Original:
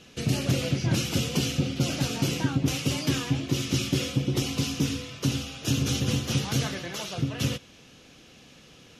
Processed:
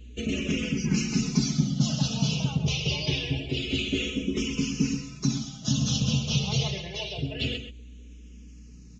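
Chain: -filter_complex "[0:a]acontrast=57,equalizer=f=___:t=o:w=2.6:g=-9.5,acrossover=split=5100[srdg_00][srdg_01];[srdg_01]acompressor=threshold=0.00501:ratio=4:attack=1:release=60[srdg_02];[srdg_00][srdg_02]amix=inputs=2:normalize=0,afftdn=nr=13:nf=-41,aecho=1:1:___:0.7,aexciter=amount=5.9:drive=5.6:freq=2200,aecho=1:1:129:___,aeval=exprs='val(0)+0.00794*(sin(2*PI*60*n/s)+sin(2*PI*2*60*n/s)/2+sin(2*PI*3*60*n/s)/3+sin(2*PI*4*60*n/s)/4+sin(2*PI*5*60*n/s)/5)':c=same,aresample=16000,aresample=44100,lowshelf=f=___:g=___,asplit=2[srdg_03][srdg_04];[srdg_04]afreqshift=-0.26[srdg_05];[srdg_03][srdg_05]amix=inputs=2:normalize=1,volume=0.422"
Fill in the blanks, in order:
3900, 4.7, 0.299, 170, 9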